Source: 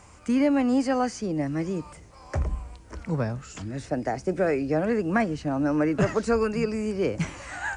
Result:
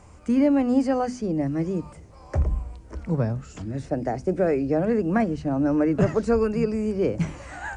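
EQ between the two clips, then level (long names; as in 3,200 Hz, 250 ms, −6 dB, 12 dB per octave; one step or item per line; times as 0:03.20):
low-shelf EQ 340 Hz +10.5 dB
parametric band 570 Hz +4 dB 1.7 octaves
mains-hum notches 50/100/150/200/250 Hz
−5.0 dB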